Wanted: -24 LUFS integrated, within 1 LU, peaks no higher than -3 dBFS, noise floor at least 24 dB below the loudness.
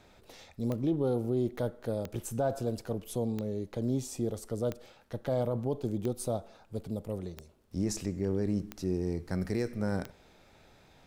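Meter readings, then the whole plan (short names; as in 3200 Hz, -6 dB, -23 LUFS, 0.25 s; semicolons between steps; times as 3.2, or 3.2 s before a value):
clicks 8; loudness -33.5 LUFS; peak -16.5 dBFS; loudness target -24.0 LUFS
-> de-click; gain +9.5 dB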